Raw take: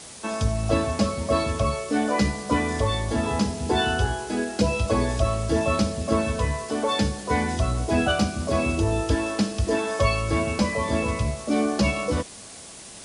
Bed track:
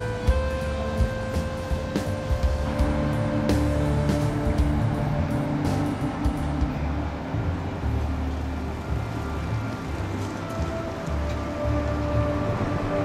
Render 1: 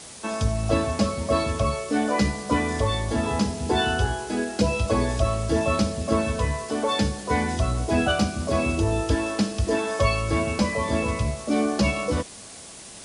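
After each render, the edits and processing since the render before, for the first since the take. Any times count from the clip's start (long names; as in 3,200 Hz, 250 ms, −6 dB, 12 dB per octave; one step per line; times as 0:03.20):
no processing that can be heard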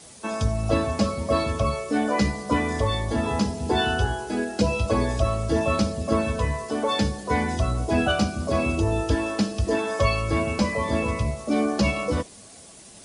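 broadband denoise 7 dB, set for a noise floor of −42 dBFS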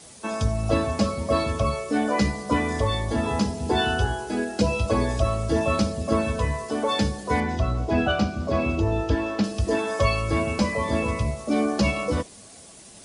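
0:07.40–0:09.44: high-frequency loss of the air 110 metres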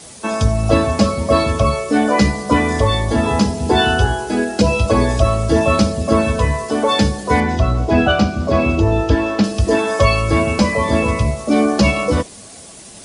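level +8.5 dB
brickwall limiter −1 dBFS, peak gain reduction 2 dB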